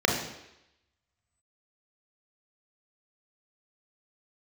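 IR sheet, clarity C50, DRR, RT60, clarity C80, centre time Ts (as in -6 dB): 4.5 dB, -1.0 dB, 0.85 s, 7.0 dB, 42 ms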